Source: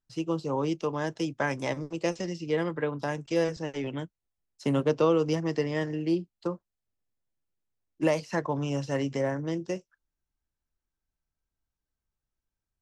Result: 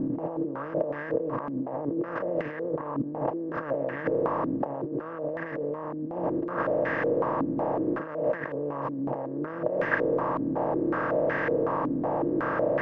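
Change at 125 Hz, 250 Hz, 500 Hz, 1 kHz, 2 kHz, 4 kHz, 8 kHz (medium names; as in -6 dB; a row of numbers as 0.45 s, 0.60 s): -3.5 dB, +1.5 dB, +3.0 dB, +6.5 dB, +5.0 dB, under -10 dB, under -25 dB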